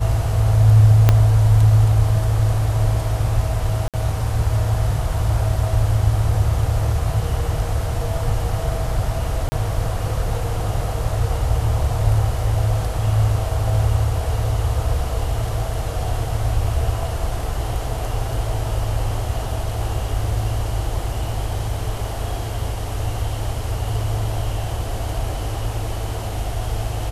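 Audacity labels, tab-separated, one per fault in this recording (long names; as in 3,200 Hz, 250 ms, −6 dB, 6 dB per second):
1.090000	1.090000	click −1 dBFS
3.880000	3.940000	drop-out 57 ms
9.490000	9.520000	drop-out 30 ms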